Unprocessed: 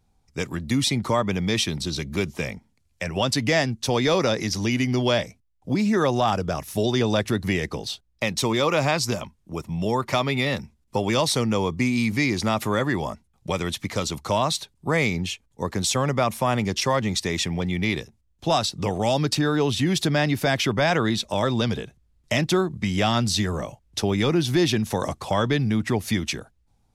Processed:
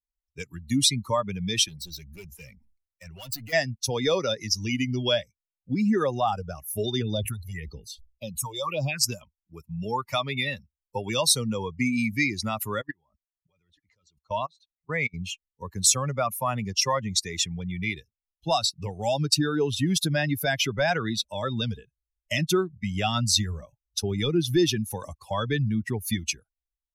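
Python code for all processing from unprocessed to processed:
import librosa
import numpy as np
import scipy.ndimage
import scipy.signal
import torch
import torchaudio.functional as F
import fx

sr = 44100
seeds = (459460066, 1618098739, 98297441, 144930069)

y = fx.chain(x, sr, fx.clip_hard(threshold_db=-27.5),
    fx.sustainer(db_per_s=87.0), at=(1.68, 3.53))
y = fx.chain(y, sr, fx.phaser_stages(stages=4, low_hz=220.0, high_hz=2000.0, hz=1.8, feedback_pct=20),
    fx.sustainer(db_per_s=100.0), at=(7.02, 9.02))
y = fx.chain(y, sr, fx.lowpass(hz=6300.0, slope=12),
    fx.level_steps(step_db=22),
    fx.echo_single(ms=883, db=-19.5), at=(12.81, 15.14))
y = fx.bin_expand(y, sr, power=2.0)
y = fx.high_shelf(y, sr, hz=4200.0, db=11.0)
y = y * librosa.db_to_amplitude(1.0)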